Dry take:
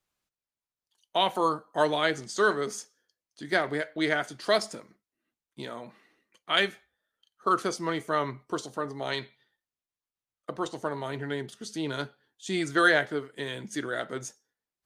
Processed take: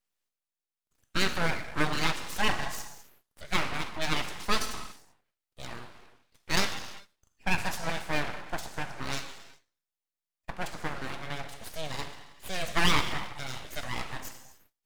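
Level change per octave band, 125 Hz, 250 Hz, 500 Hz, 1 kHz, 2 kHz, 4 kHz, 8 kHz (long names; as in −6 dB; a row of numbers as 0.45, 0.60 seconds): +2.5, −4.5, −9.5, −4.0, −2.5, 0.0, +2.5 decibels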